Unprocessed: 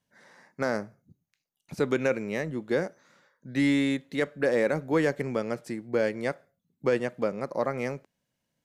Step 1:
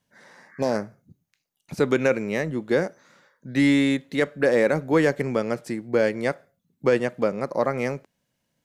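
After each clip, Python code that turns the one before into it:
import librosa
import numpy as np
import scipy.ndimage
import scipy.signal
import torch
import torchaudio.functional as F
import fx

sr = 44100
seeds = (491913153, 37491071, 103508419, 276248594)

y = fx.spec_repair(x, sr, seeds[0], start_s=0.51, length_s=0.23, low_hz=1100.0, high_hz=2300.0, source='both')
y = y * 10.0 ** (5.0 / 20.0)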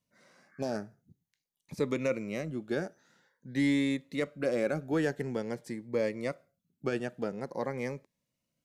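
y = fx.notch_cascade(x, sr, direction='rising', hz=0.48)
y = y * 10.0 ** (-8.0 / 20.0)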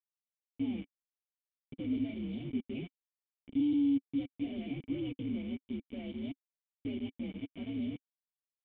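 y = fx.partial_stretch(x, sr, pct=127)
y = fx.quant_companded(y, sr, bits=2)
y = fx.formant_cascade(y, sr, vowel='i')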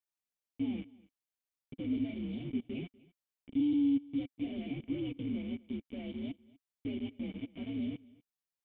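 y = x + 10.0 ** (-23.0 / 20.0) * np.pad(x, (int(244 * sr / 1000.0), 0))[:len(x)]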